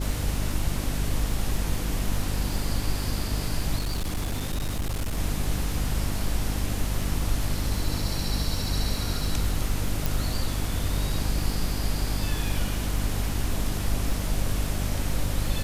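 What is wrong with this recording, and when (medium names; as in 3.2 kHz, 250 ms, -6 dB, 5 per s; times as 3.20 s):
crackle 78 per s -34 dBFS
hum 50 Hz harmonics 6 -30 dBFS
3.78–5.19 s: clipped -24 dBFS
10.06 s: pop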